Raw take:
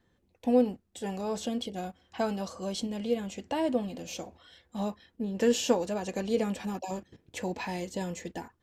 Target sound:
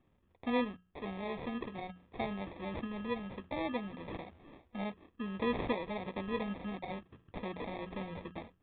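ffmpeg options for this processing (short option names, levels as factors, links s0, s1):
-filter_complex "[0:a]equalizer=f=440:w=0.34:g=-5,bandreject=f=60:t=h:w=6,bandreject=f=120:t=h:w=6,bandreject=f=180:t=h:w=6,asplit=2[s0][s1];[s1]acompressor=threshold=0.00562:ratio=6,volume=1.19[s2];[s0][s2]amix=inputs=2:normalize=0,acrusher=samples=30:mix=1:aa=0.000001,aresample=8000,aresample=44100,volume=0.562"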